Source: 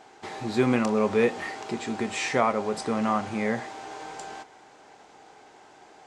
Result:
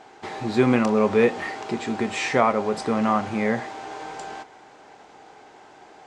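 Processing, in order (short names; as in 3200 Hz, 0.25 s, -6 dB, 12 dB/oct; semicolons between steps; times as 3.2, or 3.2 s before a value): high shelf 6400 Hz -8 dB; gain +4 dB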